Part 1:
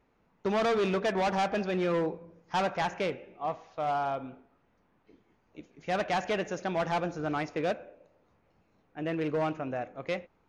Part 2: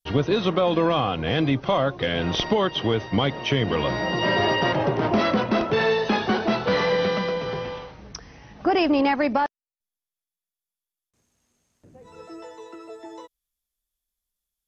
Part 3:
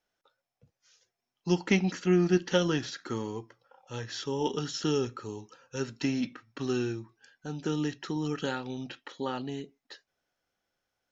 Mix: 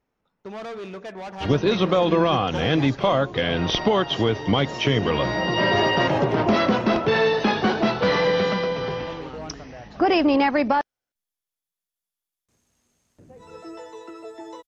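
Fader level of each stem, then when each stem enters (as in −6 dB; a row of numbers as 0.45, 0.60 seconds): −7.5, +1.5, −7.5 decibels; 0.00, 1.35, 0.00 seconds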